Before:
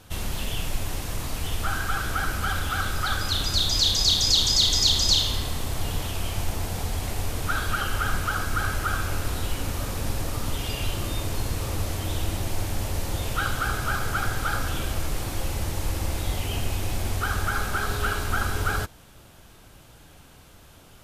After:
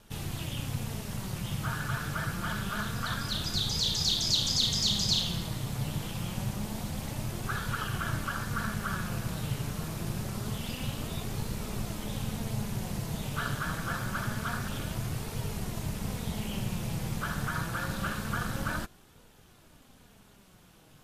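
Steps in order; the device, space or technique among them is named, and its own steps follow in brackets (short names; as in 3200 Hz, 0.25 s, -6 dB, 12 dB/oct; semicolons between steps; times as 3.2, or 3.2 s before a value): alien voice (ring modulator 120 Hz; flange 0.26 Hz, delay 2 ms, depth 5 ms, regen +64%)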